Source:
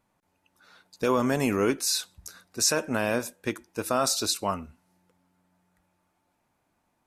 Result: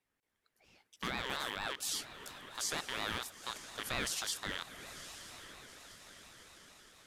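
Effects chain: rattle on loud lows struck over -40 dBFS, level -17 dBFS; high-pass 720 Hz 6 dB/octave; peak limiter -18 dBFS, peak gain reduction 7.5 dB; echo that smears into a reverb 932 ms, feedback 56%, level -12 dB; ring modulator with a swept carrier 1 kHz, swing 35%, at 4.3 Hz; trim -5.5 dB

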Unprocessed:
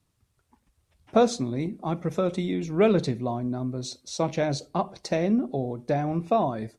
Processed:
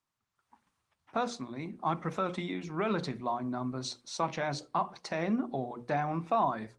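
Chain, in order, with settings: band-pass 150–7700 Hz; level rider gain up to 14 dB; resonant low shelf 740 Hz -11.5 dB, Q 1.5; peak limiter -13 dBFS, peak gain reduction 8 dB; wow and flutter 27 cents; tilt shelf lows +5 dB, about 1.3 kHz; hum notches 60/120/180/240/300/360/420/480/540 Hz; trim -7.5 dB; Opus 24 kbps 48 kHz

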